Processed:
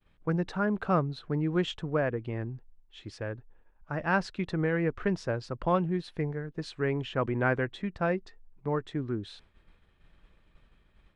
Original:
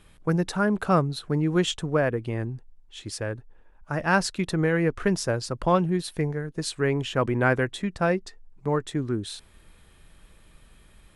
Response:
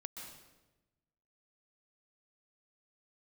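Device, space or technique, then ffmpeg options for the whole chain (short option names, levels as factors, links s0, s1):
hearing-loss simulation: -af "lowpass=3400,agate=range=0.0224:threshold=0.00398:ratio=3:detection=peak,volume=0.562"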